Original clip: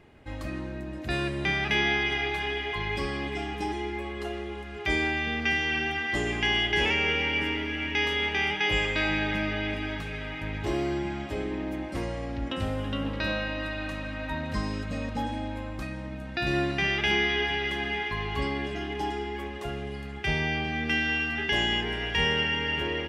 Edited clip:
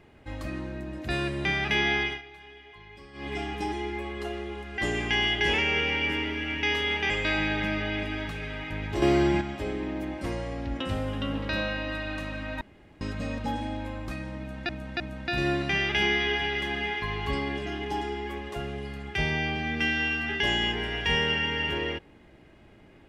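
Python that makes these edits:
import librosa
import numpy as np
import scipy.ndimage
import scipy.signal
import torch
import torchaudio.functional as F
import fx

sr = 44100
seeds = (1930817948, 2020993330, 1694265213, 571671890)

y = fx.edit(x, sr, fx.fade_down_up(start_s=2.02, length_s=1.31, db=-18.0, fade_s=0.2),
    fx.cut(start_s=4.78, length_s=1.32),
    fx.cut(start_s=8.42, length_s=0.39),
    fx.clip_gain(start_s=10.73, length_s=0.39, db=7.0),
    fx.room_tone_fill(start_s=14.32, length_s=0.4),
    fx.repeat(start_s=16.09, length_s=0.31, count=3), tone=tone)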